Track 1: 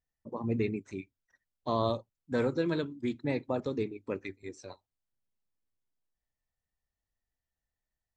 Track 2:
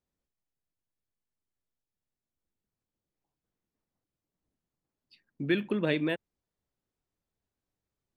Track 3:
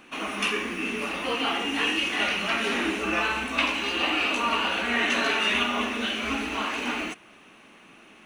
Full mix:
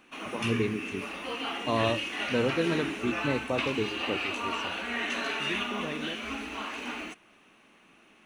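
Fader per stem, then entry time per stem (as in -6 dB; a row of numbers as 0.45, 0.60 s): +2.0, -9.5, -7.5 dB; 0.00, 0.00, 0.00 s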